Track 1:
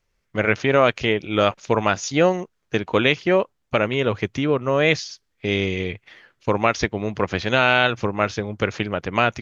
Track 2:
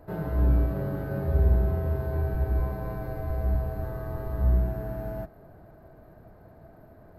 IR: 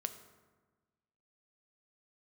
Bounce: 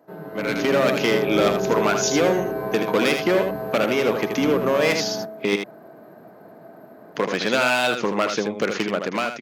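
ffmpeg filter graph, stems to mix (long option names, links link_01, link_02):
-filter_complex "[0:a]volume=16.5dB,asoftclip=hard,volume=-16.5dB,acompressor=threshold=-25dB:ratio=3,volume=-5dB,asplit=3[link_01][link_02][link_03];[link_01]atrim=end=5.56,asetpts=PTS-STARTPTS,afade=type=out:start_time=5.556:duration=0.004:curve=hsin[link_04];[link_02]atrim=start=5.56:end=7.15,asetpts=PTS-STARTPTS,volume=0[link_05];[link_03]atrim=start=7.15,asetpts=PTS-STARTPTS,afade=type=in:duration=0.004:curve=hsin[link_06];[link_04][link_05][link_06]concat=n=3:v=0:a=1,asplit=2[link_07][link_08];[link_08]volume=-6.5dB[link_09];[1:a]volume=-6.5dB,asplit=2[link_10][link_11];[link_11]volume=-3.5dB[link_12];[2:a]atrim=start_sample=2205[link_13];[link_12][link_13]afir=irnorm=-1:irlink=0[link_14];[link_09]aecho=0:1:79:1[link_15];[link_07][link_10][link_14][link_15]amix=inputs=4:normalize=0,highpass=frequency=190:width=0.5412,highpass=frequency=190:width=1.3066,dynaudnorm=framelen=150:gausssize=7:maxgain=11.5dB"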